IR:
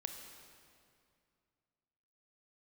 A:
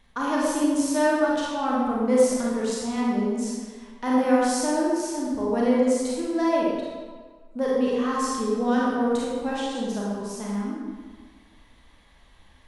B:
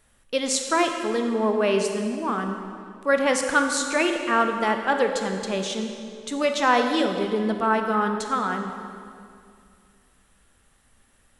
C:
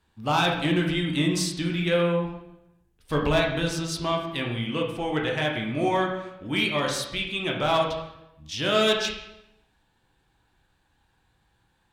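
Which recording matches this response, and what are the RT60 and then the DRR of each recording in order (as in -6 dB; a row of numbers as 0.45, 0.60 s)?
B; 1.6, 2.4, 0.85 s; -6.0, 4.5, -1.0 dB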